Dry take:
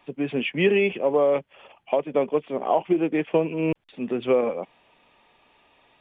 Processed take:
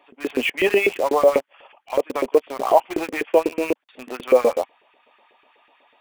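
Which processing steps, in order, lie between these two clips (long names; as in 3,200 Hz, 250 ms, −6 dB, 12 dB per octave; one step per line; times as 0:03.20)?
parametric band 250 Hz +11.5 dB 0.8 octaves
auto-filter high-pass saw up 8.1 Hz 400–1,800 Hz
in parallel at −4 dB: bit reduction 5 bits
on the sum: transient designer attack −6 dB, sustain −2 dB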